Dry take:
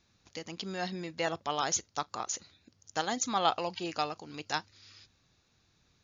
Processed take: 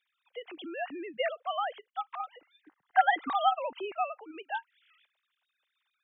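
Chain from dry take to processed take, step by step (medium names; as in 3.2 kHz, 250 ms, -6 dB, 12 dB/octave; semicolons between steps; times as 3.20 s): formants replaced by sine waves; time-frequency box 2.64–3.33 s, 730–2100 Hz +11 dB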